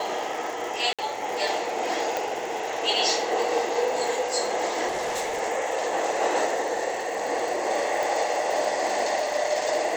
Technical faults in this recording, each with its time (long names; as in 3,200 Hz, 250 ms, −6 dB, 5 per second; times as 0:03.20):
surface crackle 200 per second −33 dBFS
0:00.93–0:00.99: drop-out 56 ms
0:02.17: click
0:04.87–0:05.41: clipping −25 dBFS
0:08.03: click